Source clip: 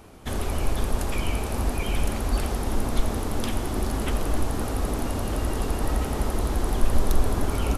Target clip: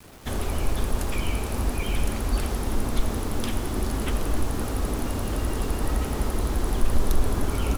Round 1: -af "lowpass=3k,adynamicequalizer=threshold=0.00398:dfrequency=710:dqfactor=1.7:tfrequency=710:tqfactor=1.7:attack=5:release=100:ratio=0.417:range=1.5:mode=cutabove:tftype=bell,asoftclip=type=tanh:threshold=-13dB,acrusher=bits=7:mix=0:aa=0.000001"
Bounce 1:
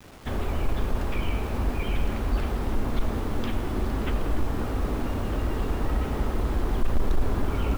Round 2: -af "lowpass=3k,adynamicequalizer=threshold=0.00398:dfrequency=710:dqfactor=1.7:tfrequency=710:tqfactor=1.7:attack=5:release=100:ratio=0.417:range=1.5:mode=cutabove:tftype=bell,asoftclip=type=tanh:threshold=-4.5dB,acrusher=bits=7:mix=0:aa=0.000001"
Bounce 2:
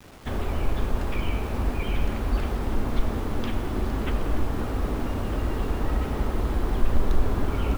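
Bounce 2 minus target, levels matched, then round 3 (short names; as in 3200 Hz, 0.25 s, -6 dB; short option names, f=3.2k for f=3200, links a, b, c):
4000 Hz band -4.0 dB
-af "adynamicequalizer=threshold=0.00398:dfrequency=710:dqfactor=1.7:tfrequency=710:tqfactor=1.7:attack=5:release=100:ratio=0.417:range=1.5:mode=cutabove:tftype=bell,asoftclip=type=tanh:threshold=-4.5dB,acrusher=bits=7:mix=0:aa=0.000001"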